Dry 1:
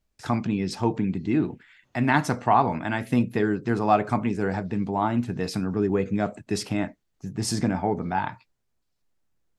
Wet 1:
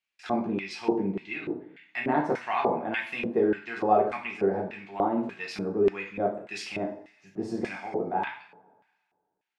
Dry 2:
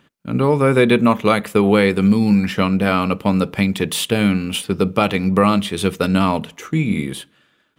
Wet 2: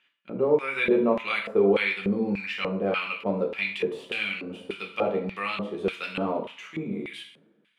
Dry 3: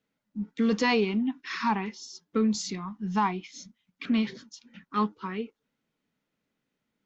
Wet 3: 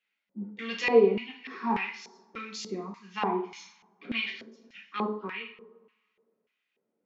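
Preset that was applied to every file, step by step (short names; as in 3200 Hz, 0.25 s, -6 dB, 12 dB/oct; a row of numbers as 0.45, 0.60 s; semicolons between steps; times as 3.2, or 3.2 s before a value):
two-slope reverb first 0.49 s, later 1.7 s, from -20 dB, DRR -1 dB; LFO band-pass square 1.7 Hz 490–2500 Hz; normalise peaks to -9 dBFS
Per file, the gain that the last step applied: +3.5, -4.5, +5.5 dB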